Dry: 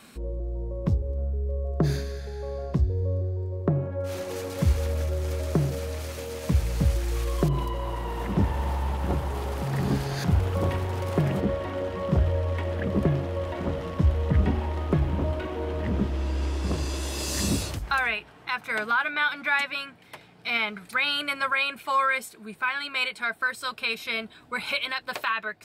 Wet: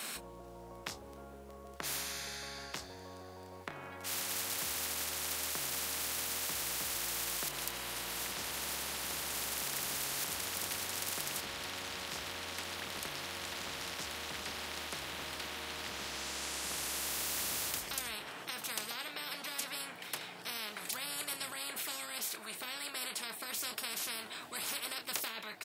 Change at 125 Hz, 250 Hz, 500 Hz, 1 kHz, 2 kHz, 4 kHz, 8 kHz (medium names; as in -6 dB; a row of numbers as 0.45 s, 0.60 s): -28.5 dB, -20.5 dB, -16.5 dB, -13.0 dB, -12.5 dB, -3.5 dB, +4.5 dB